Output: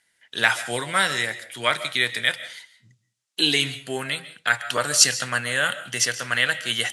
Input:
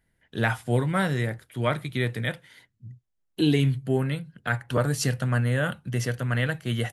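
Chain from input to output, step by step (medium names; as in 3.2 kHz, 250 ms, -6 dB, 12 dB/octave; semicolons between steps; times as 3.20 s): frequency weighting ITU-R 468; reverberation RT60 0.30 s, pre-delay 100 ms, DRR 14 dB; trim +4 dB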